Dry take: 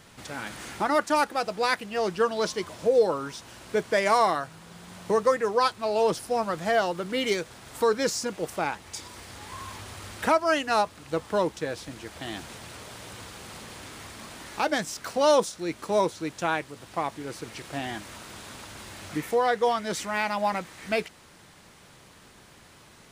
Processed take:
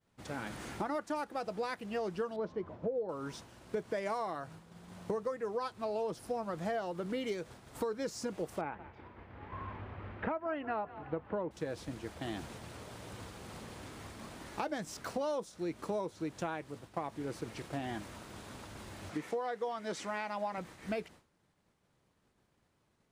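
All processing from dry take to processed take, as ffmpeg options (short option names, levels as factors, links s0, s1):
-filter_complex "[0:a]asettb=1/sr,asplit=3[s0][s1][s2];[s0]atrim=end=2.364[s3];[s1]atrim=start=2.36:end=3.09,asetpts=PTS-STARTPTS,afade=t=in:d=0.004:c=qsin,afade=t=out:st=0.726:d=0.004:c=qsin,lowpass=f=1300:p=1,aemphasis=mode=reproduction:type=75kf[s4];[s2]atrim=start=3.086[s5];[s3][s4]acrossfade=d=0.004:c1=hsin:c2=qsin[s6];[s6][s5]acrossfade=d=0.004:c1=qsin:c2=hsin,asettb=1/sr,asplit=3[s7][s8][s9];[s7]atrim=end=8.614[s10];[s8]atrim=start=8.61:end=11.51,asetpts=PTS-STARTPTS,afade=t=in:d=0.004:c=qsin,afade=t=out:st=2.896:d=0.004:c=qsin,lowpass=f=2500:w=0.5412,lowpass=f=2500:w=1.3066,asplit=5[s11][s12][s13][s14][s15];[s12]adelay=180,afreqshift=40,volume=0.1[s16];[s13]adelay=360,afreqshift=80,volume=0.055[s17];[s14]adelay=540,afreqshift=120,volume=0.0302[s18];[s15]adelay=720,afreqshift=160,volume=0.0166[s19];[s11][s16][s17][s18][s19]amix=inputs=5:normalize=0,atrim=end_sample=127890[s20];[s9]atrim=start=11.506[s21];[s10][s20]acrossfade=d=0.004:c1=hsin:c2=qsin[s22];[s22][s21]acrossfade=d=0.004:c1=qsin:c2=hsin,asettb=1/sr,asplit=3[s23][s24][s25];[s23]atrim=end=19.104[s26];[s24]atrim=start=19.1:end=20.58,asetpts=PTS-STARTPTS,afade=t=in:d=0.004:c=qsin,afade=t=out:st=1.476:d=0.004:c=qsin,acrossover=split=9000[s27][s28];[s28]acompressor=threshold=0.001:ratio=4:attack=1:release=60[s29];[s27][s29]amix=inputs=2:normalize=0,highpass=f=320:p=1[s30];[s25]atrim=start=20.576[s31];[s26][s30]acrossfade=d=0.004:c1=hsin:c2=qsin[s32];[s32][s31]acrossfade=d=0.004:c1=qsin:c2=hsin,agate=range=0.0224:threshold=0.01:ratio=3:detection=peak,tiltshelf=f=1100:g=4.5,acompressor=threshold=0.0355:ratio=6,volume=0.596"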